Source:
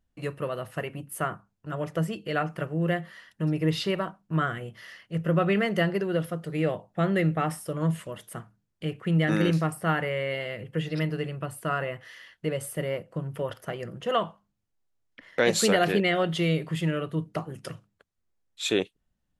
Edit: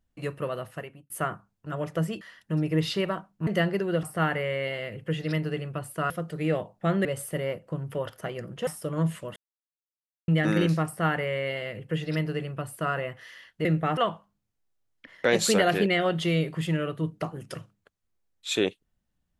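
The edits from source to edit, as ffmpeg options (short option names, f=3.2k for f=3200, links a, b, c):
-filter_complex "[0:a]asplit=12[a][b][c][d][e][f][g][h][i][j][k][l];[a]atrim=end=1.1,asetpts=PTS-STARTPTS,afade=t=out:st=0.56:d=0.54[m];[b]atrim=start=1.1:end=2.212,asetpts=PTS-STARTPTS,afade=t=in:d=0.004:c=hsin[n];[c]atrim=start=3.108:end=4.372[o];[d]atrim=start=5.678:end=6.242[p];[e]atrim=start=9.698:end=11.772[q];[f]atrim=start=6.238:end=7.192[r];[g]atrim=start=12.488:end=14.112[s];[h]atrim=start=7.508:end=8.2,asetpts=PTS-STARTPTS,afade=t=out:st=0.688:d=0.004:c=hsin[t];[i]atrim=start=8.2:end=9.12,asetpts=PTS-STARTPTS,volume=0[u];[j]atrim=start=9.12:end=12.492,asetpts=PTS-STARTPTS,afade=t=in:d=0.004:c=hsin[v];[k]atrim=start=7.188:end=7.512[w];[l]atrim=start=14.108[x];[m][n]concat=n=2:v=0:a=1[y];[y][o]acrossfade=d=0.004:c1=hsin:c2=hsin[z];[z][p]acrossfade=d=0.004:c1=hsin:c2=hsin[aa];[aa][q]acrossfade=d=0.004:c1=hsin:c2=hsin[ab];[ab][r]acrossfade=d=0.004:c1=hsin:c2=hsin[ac];[ac][s]acrossfade=d=0.004:c1=hsin:c2=hsin[ad];[t][u][v]concat=n=3:v=0:a=1[ae];[ad][ae]acrossfade=d=0.004:c1=hsin:c2=hsin[af];[af][w]acrossfade=d=0.004:c1=hsin:c2=hsin[ag];[ag][x]acrossfade=d=0.004:c1=hsin:c2=hsin"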